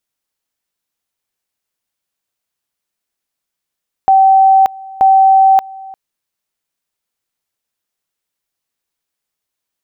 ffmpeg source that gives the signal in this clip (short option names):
-f lavfi -i "aevalsrc='pow(10,(-4.5-23*gte(mod(t,0.93),0.58))/20)*sin(2*PI*771*t)':d=1.86:s=44100"